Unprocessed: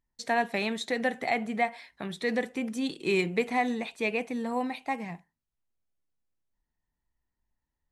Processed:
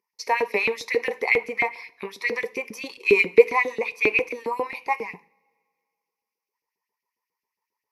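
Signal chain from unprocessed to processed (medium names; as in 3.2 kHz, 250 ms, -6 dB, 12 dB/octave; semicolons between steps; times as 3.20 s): rippled EQ curve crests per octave 0.83, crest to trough 16 dB; LFO high-pass saw up 7.4 Hz 300–3400 Hz; two-slope reverb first 0.47 s, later 2.2 s, from -22 dB, DRR 17 dB; trim +1 dB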